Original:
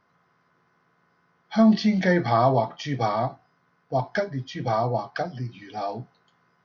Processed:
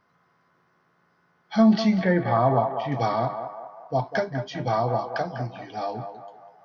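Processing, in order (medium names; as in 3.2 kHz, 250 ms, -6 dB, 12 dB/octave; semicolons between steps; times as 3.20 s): 1.99–2.92 s: distance through air 350 m; band-passed feedback delay 198 ms, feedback 53%, band-pass 830 Hz, level -7 dB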